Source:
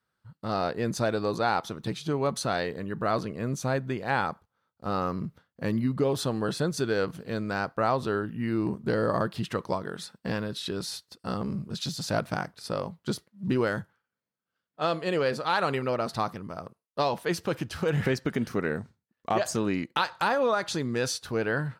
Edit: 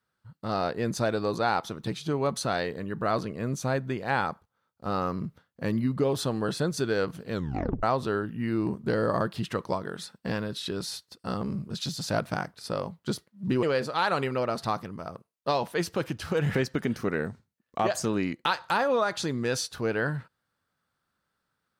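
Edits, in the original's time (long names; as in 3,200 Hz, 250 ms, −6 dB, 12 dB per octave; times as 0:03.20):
0:07.33: tape stop 0.50 s
0:13.63–0:15.14: remove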